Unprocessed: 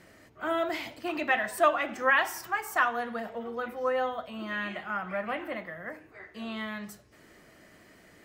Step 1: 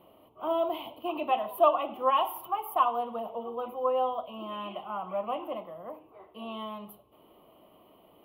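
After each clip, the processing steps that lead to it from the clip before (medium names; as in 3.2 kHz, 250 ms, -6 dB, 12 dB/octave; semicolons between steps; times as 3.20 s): FFT filter 110 Hz 0 dB, 1.1 kHz +14 dB, 1.7 kHz -21 dB, 3 kHz +10 dB, 5.1 kHz -21 dB, 7.6 kHz -28 dB, 11 kHz +10 dB; trim -8.5 dB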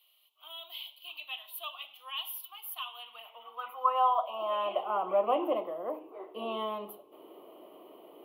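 high-pass sweep 3.9 kHz -> 360 Hz, 2.74–5.08 s; trim +2.5 dB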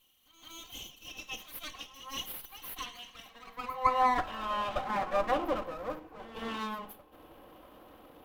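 comb filter that takes the minimum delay 3.8 ms; pre-echo 166 ms -13 dB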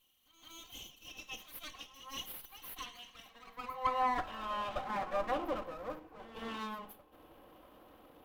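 saturation -17.5 dBFS, distortion -21 dB; trim -4.5 dB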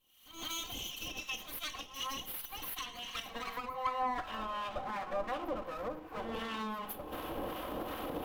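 recorder AGC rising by 56 dB/s; harmonic tremolo 2.7 Hz, depth 50%, crossover 920 Hz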